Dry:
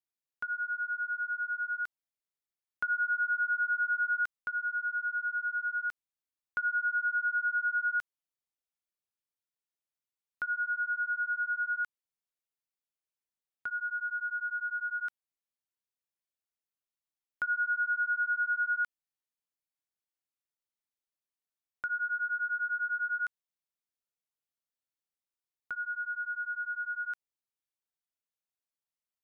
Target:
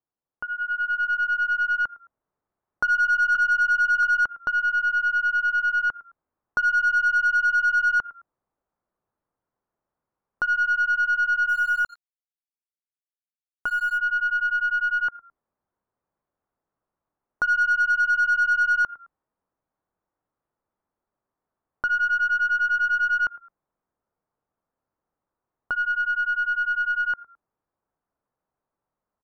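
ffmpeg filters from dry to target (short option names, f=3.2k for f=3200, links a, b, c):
-filter_complex "[0:a]asplit=2[a][b];[b]asplit=2[c][d];[c]adelay=107,afreqshift=-31,volume=-22.5dB[e];[d]adelay=214,afreqshift=-62,volume=-32.4dB[f];[e][f]amix=inputs=2:normalize=0[g];[a][g]amix=inputs=2:normalize=0,dynaudnorm=f=550:g=3:m=10.5dB,asettb=1/sr,asplit=3[h][i][j];[h]atrim=end=3.354[k];[i]atrim=start=3.35:end=4.03,asetpts=PTS-STARTPTS,afade=t=in:d=0.004:c=qsin,afade=t=out:st=0.676:d=0.004:c=qsin,asuperstop=centerf=730:order=12:qfactor=1.4[l];[j]atrim=start=4.026[m];[k][l]acrossfade=d=0.004:c1=hsin:c2=qsin[n];[n][m]acrossfade=d=0.004:c1=qsin:c2=hsin,asplit=3[o][p][q];[o]afade=t=out:st=17.69:d=0.02[r];[p]agate=range=-33dB:threshold=-20dB:ratio=3:detection=peak,afade=t=in:st=17.69:d=0.02,afade=t=out:st=18.16:d=0.02[s];[q]afade=t=in:st=18.16:d=0.02[t];[r][s][t]amix=inputs=3:normalize=0,lowpass=f=1.2k:w=0.5412,lowpass=f=1.2k:w=1.3066,aemphasis=mode=production:type=75kf,aeval=exprs='0.133*(cos(1*acos(clip(val(0)/0.133,-1,1)))-cos(1*PI/2))+0.00237*(cos(5*acos(clip(val(0)/0.133,-1,1)))-cos(5*PI/2))+0.00299*(cos(6*acos(clip(val(0)/0.133,-1,1)))-cos(6*PI/2))':c=same,asplit=2[u][v];[v]alimiter=level_in=4dB:limit=-24dB:level=0:latency=1:release=87,volume=-4dB,volume=0dB[w];[u][w]amix=inputs=2:normalize=0,acontrast=28,asplit=3[x][y][z];[x]afade=t=out:st=11.48:d=0.02[aa];[y]aeval=exprs='sgn(val(0))*max(abs(val(0))-0.01,0)':c=same,afade=t=in:st=11.48:d=0.02,afade=t=out:st=13.97:d=0.02[ab];[z]afade=t=in:st=13.97:d=0.02[ac];[aa][ab][ac]amix=inputs=3:normalize=0,volume=-3.5dB"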